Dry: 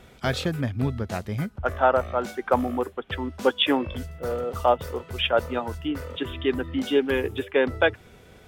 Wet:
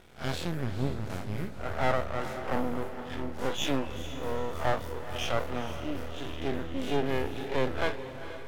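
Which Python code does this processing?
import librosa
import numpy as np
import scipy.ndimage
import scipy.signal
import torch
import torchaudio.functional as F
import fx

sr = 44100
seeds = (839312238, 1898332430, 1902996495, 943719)

y = fx.spec_blur(x, sr, span_ms=94.0)
y = np.maximum(y, 0.0)
y = fx.echo_diffused(y, sr, ms=458, feedback_pct=42, wet_db=-11.0)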